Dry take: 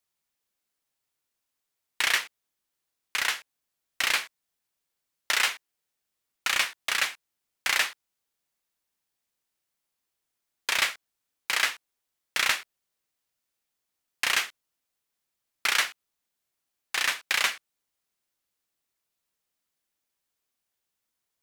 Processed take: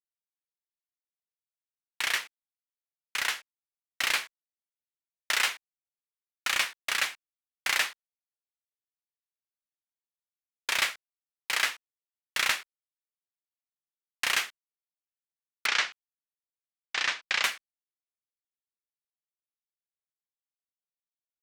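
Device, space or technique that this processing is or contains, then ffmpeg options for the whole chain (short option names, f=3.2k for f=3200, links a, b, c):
voice memo with heavy noise removal: -filter_complex "[0:a]asettb=1/sr,asplit=3[a][b][c];[a]atrim=end=15.664[d];[b]atrim=start=15.66:end=17.44,asetpts=PTS-STARTPTS,afade=t=in:d=0.004:c=qsin,afade=t=out:st=1.776:d=0.004:c=qsin,lowpass=f=6.3k:w=0.5412,lowpass=f=6.3k:w=1.3066[e];[c]atrim=start=17.436[f];[d][e]acrossfade=d=0.004:c1=hsin:c2=qsin[g];[g][f]acrossfade=d=0.004:c1=qsin:c2=hsin,agate=range=-33dB:threshold=-35dB:ratio=3:detection=peak,anlmdn=0.00398,dynaudnorm=f=930:g=5:m=4.5dB,volume=-6dB"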